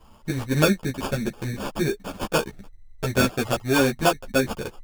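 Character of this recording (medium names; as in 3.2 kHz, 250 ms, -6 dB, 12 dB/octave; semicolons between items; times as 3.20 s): aliases and images of a low sample rate 2 kHz, jitter 0%; a shimmering, thickened sound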